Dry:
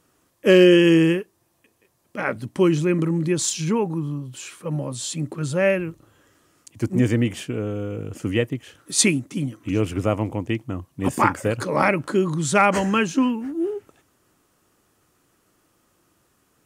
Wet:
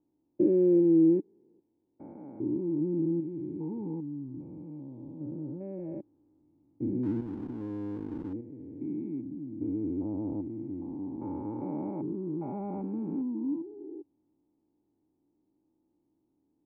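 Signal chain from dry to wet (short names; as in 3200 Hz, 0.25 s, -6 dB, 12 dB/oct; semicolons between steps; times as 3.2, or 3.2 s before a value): stepped spectrum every 0.4 s; vocal tract filter u; 7.03–8.33 backlash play -38.5 dBFS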